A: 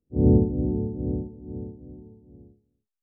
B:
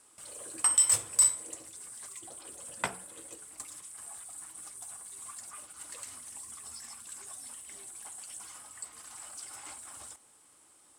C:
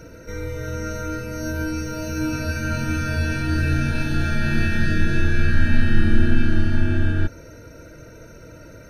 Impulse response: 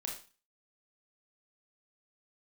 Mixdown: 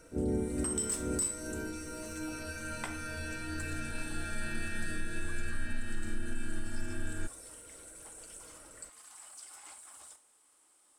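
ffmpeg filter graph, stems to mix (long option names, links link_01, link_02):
-filter_complex "[0:a]highpass=frequency=42:width=0.5412,highpass=frequency=42:width=1.3066,volume=-2dB[link_01];[1:a]volume=-8dB,asplit=2[link_02][link_03];[link_03]volume=-6dB[link_04];[2:a]volume=-12.5dB[link_05];[3:a]atrim=start_sample=2205[link_06];[link_04][link_06]afir=irnorm=-1:irlink=0[link_07];[link_01][link_02][link_05][link_07]amix=inputs=4:normalize=0,equalizer=frequency=120:width_type=o:width=1.6:gain=-12,alimiter=limit=-23.5dB:level=0:latency=1:release=220"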